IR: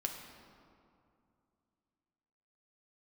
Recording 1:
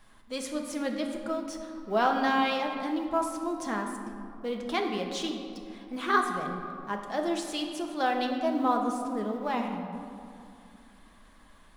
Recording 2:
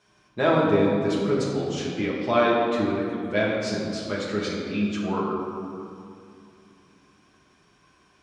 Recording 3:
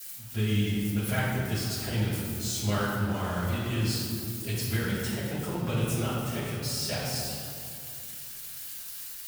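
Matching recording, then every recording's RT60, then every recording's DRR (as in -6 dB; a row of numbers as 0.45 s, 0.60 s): 1; 2.5 s, 2.5 s, 2.5 s; 2.0 dB, -6.0 dB, -10.0 dB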